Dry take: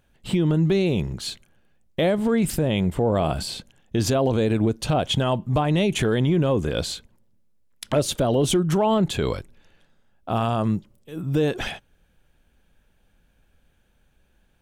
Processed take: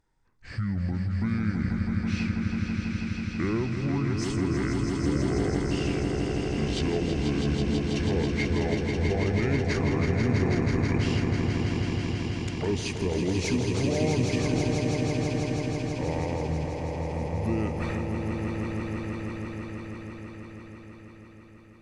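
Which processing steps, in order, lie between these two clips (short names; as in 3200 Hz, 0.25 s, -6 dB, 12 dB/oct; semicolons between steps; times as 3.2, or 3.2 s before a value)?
speed glide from 57% -> 77%; swelling echo 0.163 s, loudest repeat 5, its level -6 dB; gain -8.5 dB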